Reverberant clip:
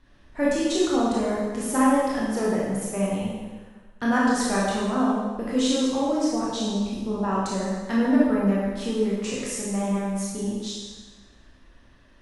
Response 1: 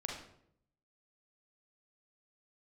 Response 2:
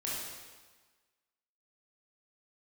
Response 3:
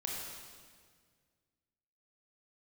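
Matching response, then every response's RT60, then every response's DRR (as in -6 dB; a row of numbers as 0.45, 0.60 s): 2; 0.70, 1.4, 1.8 s; -1.0, -6.5, -2.5 dB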